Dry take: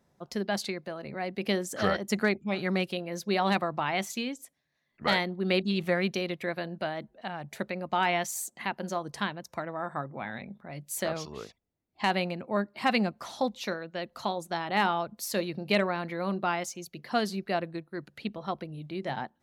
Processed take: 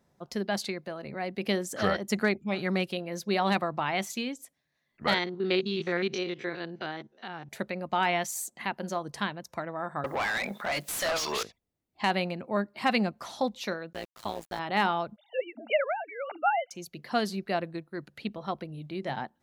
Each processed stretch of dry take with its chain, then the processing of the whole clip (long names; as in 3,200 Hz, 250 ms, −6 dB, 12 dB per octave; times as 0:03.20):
0:05.14–0:07.49: spectrum averaged block by block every 50 ms + loudspeaker in its box 140–6,600 Hz, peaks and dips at 190 Hz −5 dB, 390 Hz +5 dB, 610 Hz −9 dB, 1,400 Hz +3 dB, 3,500 Hz +4 dB, 6,000 Hz +9 dB
0:10.04–0:11.43: RIAA equalisation recording + downward compressor 2 to 1, threshold −39 dBFS + mid-hump overdrive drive 31 dB, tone 3,400 Hz, clips at −20 dBFS
0:13.93–0:14.59: high-pass filter 75 Hz 24 dB per octave + centre clipping without the shift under −40.5 dBFS + amplitude modulation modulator 110 Hz, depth 80%
0:15.16–0:16.71: three sine waves on the formant tracks + Chebyshev high-pass with heavy ripple 220 Hz, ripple 6 dB + comb filter 1.4 ms, depth 78%
whole clip: no processing